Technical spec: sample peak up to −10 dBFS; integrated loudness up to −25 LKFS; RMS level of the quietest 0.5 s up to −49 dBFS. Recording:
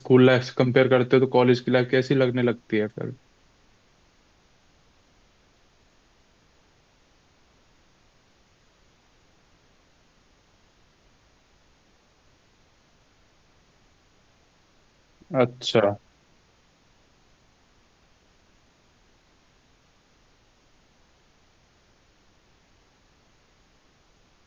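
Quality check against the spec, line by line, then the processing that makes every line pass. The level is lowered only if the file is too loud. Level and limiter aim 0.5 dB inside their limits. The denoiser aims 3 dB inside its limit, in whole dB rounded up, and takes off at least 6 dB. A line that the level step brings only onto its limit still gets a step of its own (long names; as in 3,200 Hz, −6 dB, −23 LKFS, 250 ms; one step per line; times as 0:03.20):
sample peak −5.5 dBFS: out of spec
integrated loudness −21.5 LKFS: out of spec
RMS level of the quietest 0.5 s −61 dBFS: in spec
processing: level −4 dB
brickwall limiter −10.5 dBFS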